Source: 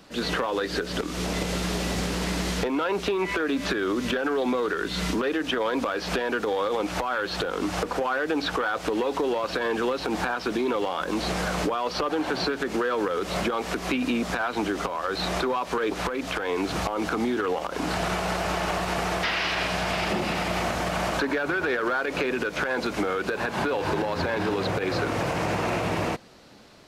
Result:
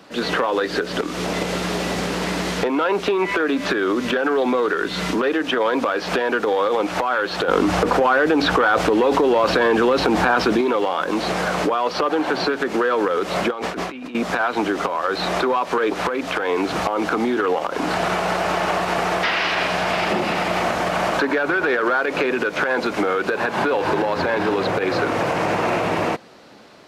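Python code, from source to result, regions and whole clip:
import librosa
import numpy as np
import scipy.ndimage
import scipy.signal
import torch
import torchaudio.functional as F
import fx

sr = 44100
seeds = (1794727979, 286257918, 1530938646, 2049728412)

y = fx.chain(x, sr, fx.low_shelf(hz=150.0, db=11.5),
    fx.env_flatten(amount_pct=70), at=(7.48, 10.61))
y = fx.chain(y, sr, fx.high_shelf(hz=7500.0, db=-6.0),
    fx.over_compress(threshold_db=-35.0, ratio=-1.0), at=(13.51, 14.15))
y = fx.highpass(y, sr, hz=280.0, slope=6)
y = fx.high_shelf(y, sr, hz=3300.0, db=-8.0)
y = y * 10.0 ** (8.0 / 20.0)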